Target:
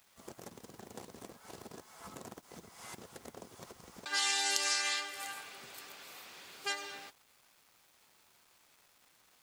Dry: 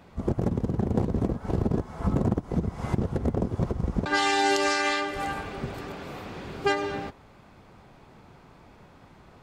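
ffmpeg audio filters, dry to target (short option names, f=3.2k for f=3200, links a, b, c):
-af "aderivative,acrusher=bits=10:mix=0:aa=0.000001,volume=3dB"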